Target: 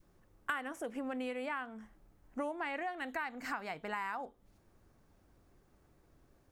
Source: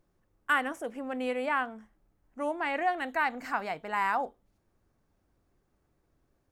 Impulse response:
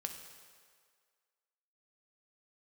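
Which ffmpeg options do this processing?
-af "acompressor=threshold=-41dB:ratio=6,adynamicequalizer=threshold=0.00141:dfrequency=660:dqfactor=1.2:tfrequency=660:tqfactor=1.2:attack=5:release=100:ratio=0.375:range=2:mode=cutabove:tftype=bell,volume=6dB"

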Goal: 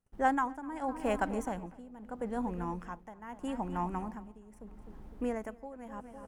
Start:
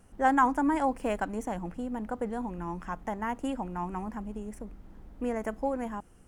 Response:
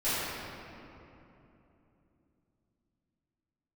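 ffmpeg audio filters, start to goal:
-filter_complex "[0:a]asplit=2[link_01][link_02];[link_02]adelay=253,lowpass=frequency=3200:poles=1,volume=-14dB,asplit=2[link_03][link_04];[link_04]adelay=253,lowpass=frequency=3200:poles=1,volume=0.52,asplit=2[link_05][link_06];[link_06]adelay=253,lowpass=frequency=3200:poles=1,volume=0.52,asplit=2[link_07][link_08];[link_08]adelay=253,lowpass=frequency=3200:poles=1,volume=0.52,asplit=2[link_09][link_10];[link_10]adelay=253,lowpass=frequency=3200:poles=1,volume=0.52[link_11];[link_01][link_03][link_05][link_07][link_09][link_11]amix=inputs=6:normalize=0,agate=range=-27dB:threshold=-53dB:ratio=16:detection=peak,tremolo=f=0.79:d=0.84"

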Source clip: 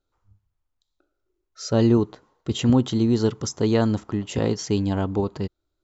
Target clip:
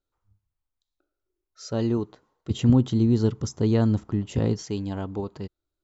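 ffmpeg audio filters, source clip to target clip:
ffmpeg -i in.wav -filter_complex "[0:a]asettb=1/sr,asplit=3[link_01][link_02][link_03];[link_01]atrim=end=2.504[link_04];[link_02]atrim=start=2.5:end=4.62,asetpts=PTS-STARTPTS,afade=type=in:duration=0.004:curve=qsin,afade=type=out:start_time=2.116:duration=0.004:curve=qsin,lowshelf=frequency=260:gain=11.5[link_05];[link_03]atrim=start=4.616[link_06];[link_04][link_05]acrossfade=duration=0.004:curve1=hsin:curve2=qsin[link_07];[link_07][link_06]acrossfade=duration=0.004:curve1=qsin:curve2=hsin,volume=-7dB" out.wav

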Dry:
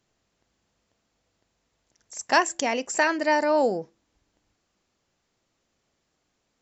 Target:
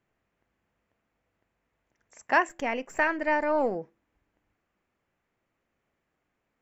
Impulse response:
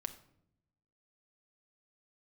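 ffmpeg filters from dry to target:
-filter_complex "[0:a]asettb=1/sr,asplit=3[link_01][link_02][link_03];[link_01]atrim=end=2.494[link_04];[link_02]atrim=start=2.49:end=3.75,asetpts=PTS-STARTPTS,afade=type=in:duration=0.004:curve=qsin,afade=type=out:start_time=1.256:duration=0.004:curve=qsin,aeval=exprs='if(lt(val(0),0),0.708*val(0),val(0))':channel_layout=same[link_05];[link_03]atrim=start=3.746[link_06];[link_04][link_05]acrossfade=duration=0.004:curve1=hsin:curve2=qsin[link_07];[link_07][link_06]acrossfade=duration=0.004:curve1=qsin:curve2=hsin,highshelf=frequency=3100:width_type=q:width=1.5:gain=-11.5,volume=-3.5dB"

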